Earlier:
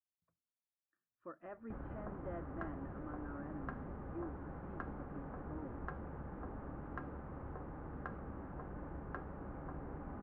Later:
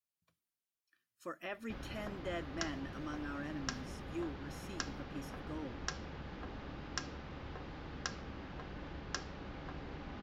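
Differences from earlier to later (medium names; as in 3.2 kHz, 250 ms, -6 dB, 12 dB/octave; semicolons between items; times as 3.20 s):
speech +5.0 dB; master: remove low-pass 1.4 kHz 24 dB/octave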